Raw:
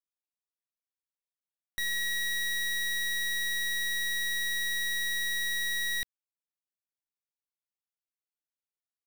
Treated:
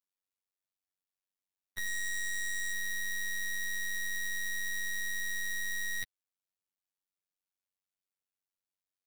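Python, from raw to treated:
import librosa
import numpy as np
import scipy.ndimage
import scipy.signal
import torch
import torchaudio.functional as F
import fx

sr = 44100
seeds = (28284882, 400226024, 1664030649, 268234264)

y = fx.robotise(x, sr, hz=94.3)
y = fx.graphic_eq_31(y, sr, hz=(160, 8000, 12500), db=(-9, 8, -6), at=(1.87, 2.73))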